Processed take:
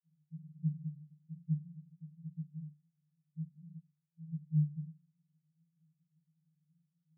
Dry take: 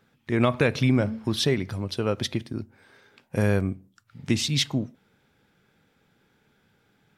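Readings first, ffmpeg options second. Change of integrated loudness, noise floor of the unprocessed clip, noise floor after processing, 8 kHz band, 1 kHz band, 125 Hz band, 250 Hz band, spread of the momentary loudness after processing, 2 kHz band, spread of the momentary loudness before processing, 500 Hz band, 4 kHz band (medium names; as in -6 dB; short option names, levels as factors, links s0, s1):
-14.0 dB, -67 dBFS, -84 dBFS, under -40 dB, under -40 dB, -10.5 dB, -16.0 dB, 20 LU, under -40 dB, 14 LU, under -40 dB, under -40 dB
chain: -af "asuperpass=centerf=160:order=12:qfactor=6.2,volume=1.19"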